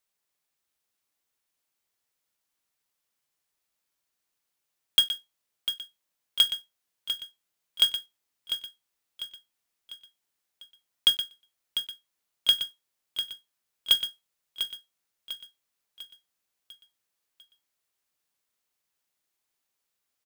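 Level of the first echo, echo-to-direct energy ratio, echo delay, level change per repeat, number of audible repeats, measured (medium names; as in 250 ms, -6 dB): -9.5 dB, -8.5 dB, 698 ms, -6.5 dB, 4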